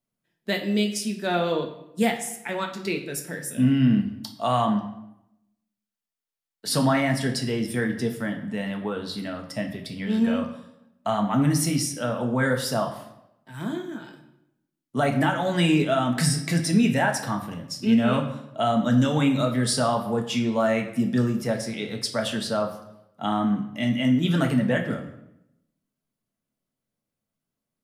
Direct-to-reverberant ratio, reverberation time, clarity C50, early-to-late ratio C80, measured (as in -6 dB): 2.5 dB, 0.85 s, 9.0 dB, 11.5 dB